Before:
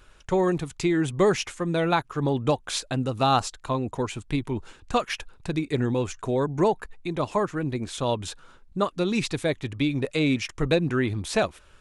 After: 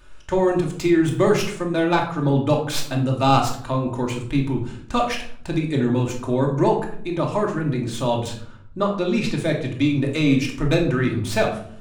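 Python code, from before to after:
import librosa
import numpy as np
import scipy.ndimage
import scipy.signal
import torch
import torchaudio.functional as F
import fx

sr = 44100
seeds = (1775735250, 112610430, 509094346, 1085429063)

y = fx.tracing_dist(x, sr, depth_ms=0.037)
y = fx.air_absorb(y, sr, metres=51.0, at=(8.28, 9.36))
y = fx.room_shoebox(y, sr, seeds[0], volume_m3=880.0, walls='furnished', distance_m=2.6)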